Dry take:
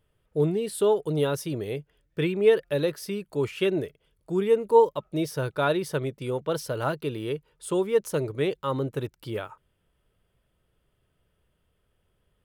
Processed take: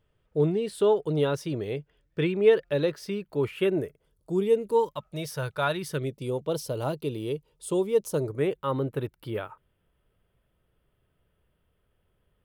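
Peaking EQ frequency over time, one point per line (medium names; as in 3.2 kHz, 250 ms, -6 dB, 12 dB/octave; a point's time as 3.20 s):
peaking EQ -12 dB 1 oct
3.06 s 12 kHz
4.48 s 1.5 kHz
5.06 s 310 Hz
5.64 s 310 Hz
6.19 s 1.6 kHz
8.04 s 1.6 kHz
8.64 s 6.4 kHz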